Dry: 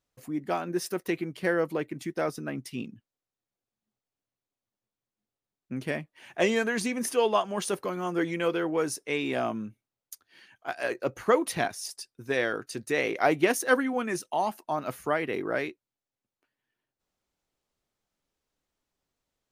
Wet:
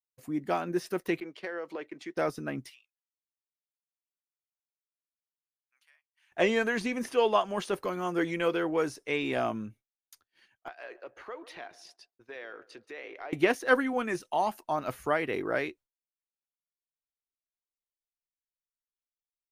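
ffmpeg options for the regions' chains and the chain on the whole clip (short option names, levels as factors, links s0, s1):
-filter_complex "[0:a]asettb=1/sr,asplit=3[s0][s1][s2];[s0]atrim=end=1.204[s3];[s1]atrim=start=1.2:end=2.17,asetpts=PTS-STARTPTS,afade=t=in:d=0.004:c=qsin,afade=t=out:st=0.966:d=0.004:c=qsin,agate=range=0.0224:threshold=0.00562:ratio=3:release=100:detection=peak,acrossover=split=310 6400:gain=0.0794 1 0.0708[s4][s5][s6];[s4][s5][s6]amix=inputs=3:normalize=0,acompressor=threshold=0.0251:ratio=10:attack=3.2:release=140:knee=1:detection=peak[s7];[s2]atrim=start=2.166[s8];[s3][s7]acrossfade=d=0.004:c1=hsin:c2=qsin[s9];[s9][s8]acrossfade=d=0.004:c1=qsin:c2=hsin,asettb=1/sr,asplit=3[s10][s11][s12];[s10]atrim=end=2.704[s13];[s11]atrim=start=2.7:end=6.32,asetpts=PTS-STARTPTS,afade=t=in:d=0.004:c=qsin,afade=t=out:st=3.616:d=0.004:c=qsin,highpass=f=1100:w=0.5412,highpass=f=1100:w=1.3066,acompressor=threshold=0.00251:ratio=8:attack=3.2:release=140:knee=1:detection=peak[s14];[s12]atrim=start=6.316[s15];[s13][s14]acrossfade=d=0.004:c1=hsin:c2=qsin[s16];[s16][s15]acrossfade=d=0.004:c1=qsin:c2=hsin,asettb=1/sr,asplit=3[s17][s18][s19];[s17]atrim=end=10.684[s20];[s18]atrim=start=10.68:end=13.33,asetpts=PTS-STARTPTS,afade=t=in:d=0.004:c=qsin,afade=t=out:st=2.646:d=0.004:c=qsin,acrossover=split=320 4500:gain=0.112 1 0.0794[s21][s22][s23];[s21][s22][s23]amix=inputs=3:normalize=0,acompressor=threshold=0.00501:ratio=2.5:attack=3.2:release=140:knee=1:detection=peak,asplit=2[s24][s25];[s25]adelay=142,lowpass=f=940:p=1,volume=0.2,asplit=2[s26][s27];[s27]adelay=142,lowpass=f=940:p=1,volume=0.45,asplit=2[s28][s29];[s29]adelay=142,lowpass=f=940:p=1,volume=0.45,asplit=2[s30][s31];[s31]adelay=142,lowpass=f=940:p=1,volume=0.45[s32];[s24][s26][s28][s30][s32]amix=inputs=5:normalize=0,atrim=end_sample=116865[s33];[s19]atrim=start=13.326[s34];[s20][s33]acrossfade=d=0.004:c1=hsin:c2=qsin[s35];[s35][s34]acrossfade=d=0.004:c1=qsin:c2=hsin,agate=range=0.0224:threshold=0.00447:ratio=3:detection=peak,acrossover=split=4100[s36][s37];[s37]acompressor=threshold=0.00398:ratio=4:attack=1:release=60[s38];[s36][s38]amix=inputs=2:normalize=0,asubboost=boost=3.5:cutoff=76"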